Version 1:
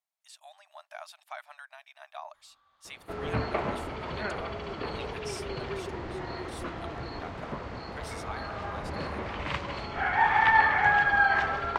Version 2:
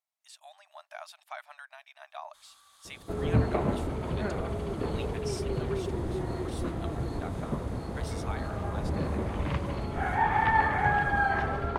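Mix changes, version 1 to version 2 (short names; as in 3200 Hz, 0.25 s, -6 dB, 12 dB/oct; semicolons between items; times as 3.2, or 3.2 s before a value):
first sound: remove tape spacing loss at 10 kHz 42 dB; second sound: add tilt shelf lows +8.5 dB, about 670 Hz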